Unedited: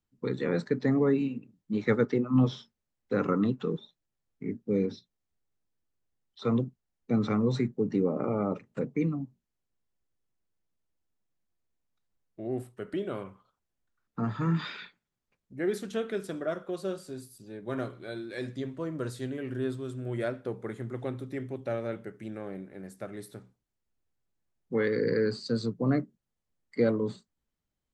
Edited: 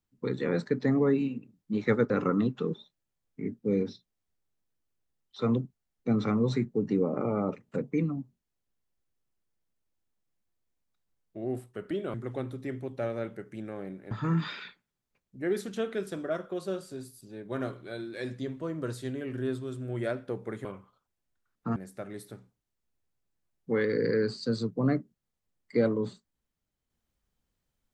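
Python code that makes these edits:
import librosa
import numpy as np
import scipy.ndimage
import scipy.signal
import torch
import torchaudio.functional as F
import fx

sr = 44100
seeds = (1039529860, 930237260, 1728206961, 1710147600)

y = fx.edit(x, sr, fx.cut(start_s=2.1, length_s=1.03),
    fx.swap(start_s=13.17, length_s=1.11, other_s=20.82, other_length_s=1.97), tone=tone)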